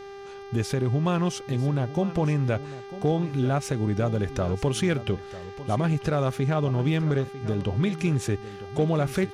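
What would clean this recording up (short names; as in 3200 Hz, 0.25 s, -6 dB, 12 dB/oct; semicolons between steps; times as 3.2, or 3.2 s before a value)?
clip repair -14.5 dBFS; de-hum 397.2 Hz, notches 16; inverse comb 0.948 s -15 dB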